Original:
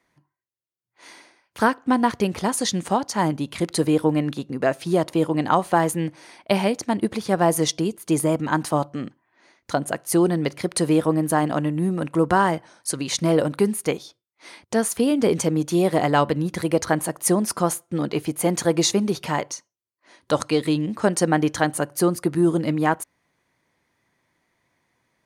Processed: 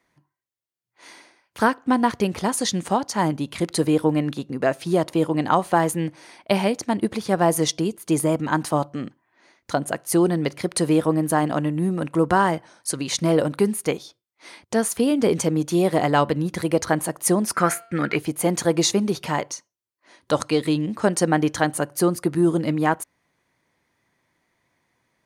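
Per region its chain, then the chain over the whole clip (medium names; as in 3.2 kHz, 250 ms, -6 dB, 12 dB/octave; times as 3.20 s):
17.54–18.16 s: high-order bell 1.8 kHz +14.5 dB 1.1 oct + de-hum 228.6 Hz, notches 22
whole clip: none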